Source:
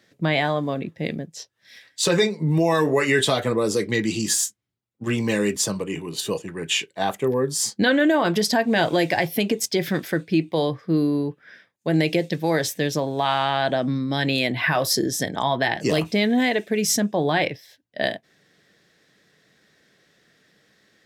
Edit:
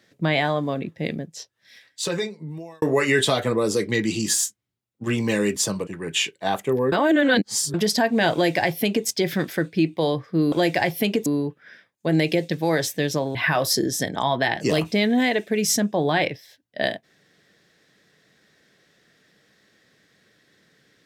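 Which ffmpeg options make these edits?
-filter_complex "[0:a]asplit=8[s0][s1][s2][s3][s4][s5][s6][s7];[s0]atrim=end=2.82,asetpts=PTS-STARTPTS,afade=t=out:st=1.36:d=1.46[s8];[s1]atrim=start=2.82:end=5.872,asetpts=PTS-STARTPTS,afade=t=in:d=0.004:c=hsin[s9];[s2]atrim=start=6.418:end=7.472[s10];[s3]atrim=start=7.468:end=8.292,asetpts=PTS-STARTPTS,areverse[s11];[s4]atrim=start=8.288:end=11.072[s12];[s5]atrim=start=8.878:end=9.622[s13];[s6]atrim=start=11.068:end=13.162[s14];[s7]atrim=start=14.548[s15];[s8][s9]concat=n=2:v=0:a=1[s16];[s16][s10]acrossfade=d=0.004:c1=hsin:c2=hsin[s17];[s17][s11]acrossfade=d=0.004:c1=hsin:c2=hsin[s18];[s18][s12]acrossfade=d=0.004:c1=hsin:c2=hsin[s19];[s19][s13]acrossfade=d=0.004:c1=hsin:c2=hsin[s20];[s20][s14]acrossfade=d=0.004:c1=hsin:c2=hsin[s21];[s21][s15]acrossfade=d=0.004:c1=hsin:c2=hsin"

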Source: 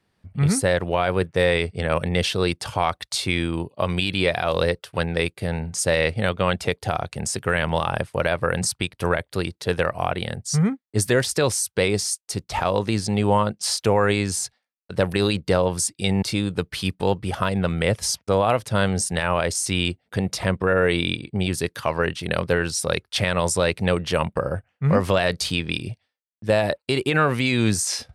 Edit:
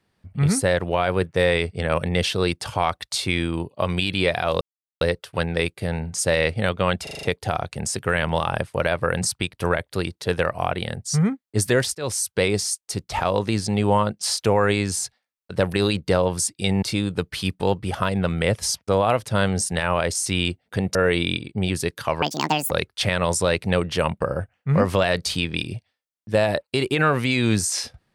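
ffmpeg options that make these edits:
-filter_complex "[0:a]asplit=11[s0][s1][s2][s3][s4][s5][s6][s7][s8][s9][s10];[s0]atrim=end=4.61,asetpts=PTS-STARTPTS,afade=t=out:st=4.606:d=0.004:c=hsin,apad=pad_dur=0.4[s11];[s1]atrim=start=4.61:end=6.672,asetpts=PTS-STARTPTS,afade=t=in:d=0.004:c=hsin[s12];[s2]atrim=start=6.628:end=6.672[s13];[s3]atrim=start=6.628:end=6.672[s14];[s4]atrim=start=6.628:end=6.672[s15];[s5]atrim=start=6.628:end=6.672[s16];[s6]atrim=start=6.628:end=11.35,asetpts=PTS-STARTPTS,afade=t=out:st=4.718:d=0.004:c=hsin[s17];[s7]atrim=start=11.35:end=20.352,asetpts=PTS-STARTPTS,afade=t=in:d=0.32:c=qsin[s18];[s8]atrim=start=20.728:end=22.004[s19];[s9]atrim=start=22:end=22.86,asetpts=PTS-STARTPTS,asetrate=77616,aresample=44100[s20];[s10]atrim=start=22.856[s21];[s11][s12]concat=n=2:v=0:a=1[s22];[s22][s13]acrossfade=d=0.004:c1=hsin:c2=hsin[s23];[s23][s14]acrossfade=d=0.004:c1=hsin:c2=hsin[s24];[s24][s15]acrossfade=d=0.004:c1=hsin:c2=hsin[s25];[s25][s16]acrossfade=d=0.004:c1=hsin:c2=hsin[s26];[s17][s18]concat=n=2:v=0:a=1[s27];[s26][s27]acrossfade=d=0.004:c1=hsin:c2=hsin[s28];[s28][s19]acrossfade=d=0.004:c1=hsin:c2=hsin[s29];[s29][s20]acrossfade=d=0.004:c1=hsin:c2=hsin[s30];[s30][s21]acrossfade=d=0.004:c1=hsin:c2=hsin"

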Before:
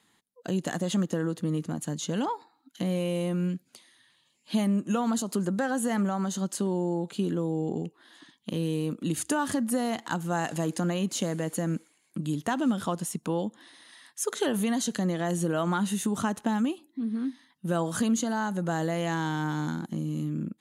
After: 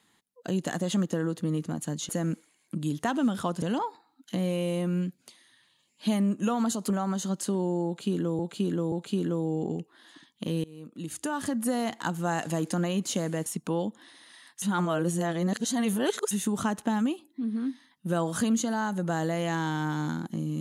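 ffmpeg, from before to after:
-filter_complex "[0:a]asplit=10[s0][s1][s2][s3][s4][s5][s6][s7][s8][s9];[s0]atrim=end=2.092[s10];[s1]atrim=start=11.518:end=13.052[s11];[s2]atrim=start=2.088:end=5.372[s12];[s3]atrim=start=6.018:end=7.512[s13];[s4]atrim=start=6.978:end=7.512[s14];[s5]atrim=start=6.978:end=8.7,asetpts=PTS-STARTPTS,afade=t=out:st=1.718:d=0.004:c=hsin:silence=0.0630957[s15];[s6]atrim=start=8.7:end=11.522,asetpts=PTS-STARTPTS,afade=t=in:d=1.11:silence=0.0630957[s16];[s7]atrim=start=13.048:end=14.212[s17];[s8]atrim=start=14.208:end=15.902,asetpts=PTS-STARTPTS,areverse[s18];[s9]atrim=start=15.898[s19];[s10][s11]acrossfade=d=0.004:c1=hsin:c2=hsin[s20];[s20][s12]acrossfade=d=0.004:c1=hsin:c2=hsin[s21];[s21][s13]acrossfade=d=0.004:c1=hsin:c2=hsin[s22];[s22][s14]acrossfade=d=0.004:c1=hsin:c2=hsin[s23];[s15][s16]concat=n=2:v=0:a=1[s24];[s23][s24]acrossfade=d=0.004:c1=hsin:c2=hsin[s25];[s25][s17]acrossfade=d=0.004:c1=hsin:c2=hsin[s26];[s26][s18]acrossfade=d=0.004:c1=hsin:c2=hsin[s27];[s27][s19]acrossfade=d=0.004:c1=hsin:c2=hsin"

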